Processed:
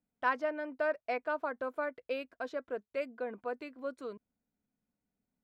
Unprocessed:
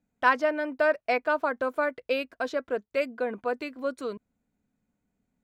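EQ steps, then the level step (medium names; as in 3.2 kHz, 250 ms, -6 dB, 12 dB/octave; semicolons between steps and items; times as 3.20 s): bass shelf 200 Hz -4 dB; treble shelf 2.7 kHz -7 dB; -7.5 dB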